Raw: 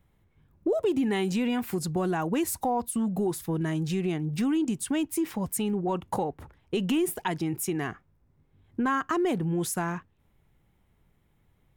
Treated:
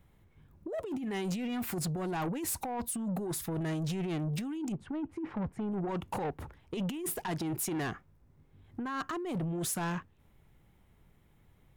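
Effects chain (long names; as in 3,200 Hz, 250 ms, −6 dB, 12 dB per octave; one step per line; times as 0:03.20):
0:04.72–0:05.72: low-pass filter 1,200 Hz 12 dB per octave
compressor whose output falls as the input rises −29 dBFS, ratio −0.5
soft clipping −30 dBFS, distortion −11 dB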